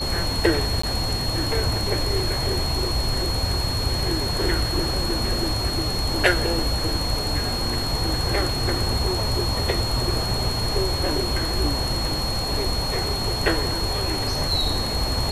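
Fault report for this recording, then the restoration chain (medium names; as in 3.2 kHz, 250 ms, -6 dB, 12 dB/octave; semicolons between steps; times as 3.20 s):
whine 4.3 kHz -27 dBFS
0.82–0.83 s: dropout 14 ms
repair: band-stop 4.3 kHz, Q 30; interpolate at 0.82 s, 14 ms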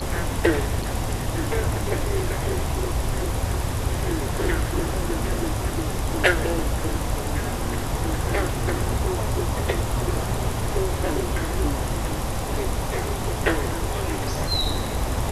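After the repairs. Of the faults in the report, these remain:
nothing left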